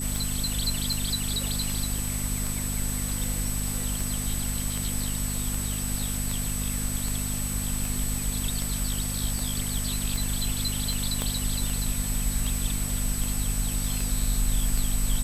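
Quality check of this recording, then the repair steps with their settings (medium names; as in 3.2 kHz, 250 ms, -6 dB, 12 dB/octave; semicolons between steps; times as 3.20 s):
hum 50 Hz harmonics 5 -32 dBFS
tick 78 rpm
whine 8 kHz -33 dBFS
11.22 s: pop -13 dBFS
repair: de-click; band-stop 8 kHz, Q 30; de-hum 50 Hz, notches 5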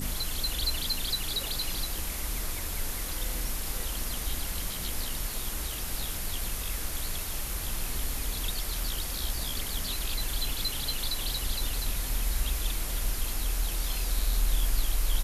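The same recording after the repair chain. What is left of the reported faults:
11.22 s: pop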